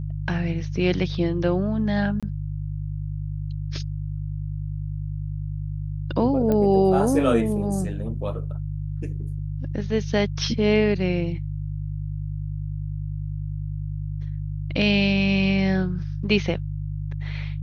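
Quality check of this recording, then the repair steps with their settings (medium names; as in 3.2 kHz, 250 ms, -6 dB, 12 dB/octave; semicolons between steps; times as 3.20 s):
hum 50 Hz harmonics 3 -29 dBFS
2.20–2.23 s: dropout 26 ms
6.52 s: pop -13 dBFS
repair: de-click; de-hum 50 Hz, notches 3; interpolate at 2.20 s, 26 ms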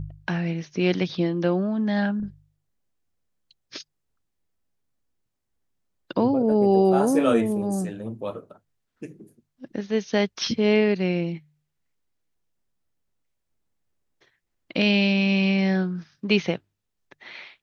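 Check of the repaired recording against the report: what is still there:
6.52 s: pop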